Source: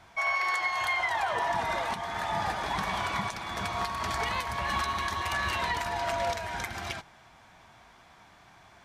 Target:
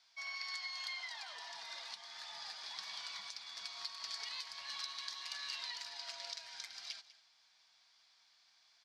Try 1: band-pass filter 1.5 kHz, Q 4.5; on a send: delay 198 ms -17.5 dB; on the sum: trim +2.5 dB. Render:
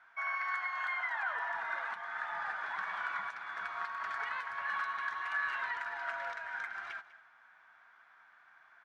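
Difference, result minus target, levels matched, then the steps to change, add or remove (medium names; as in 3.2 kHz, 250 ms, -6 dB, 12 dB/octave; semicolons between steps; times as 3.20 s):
4 kHz band -18.5 dB
change: band-pass filter 4.7 kHz, Q 4.5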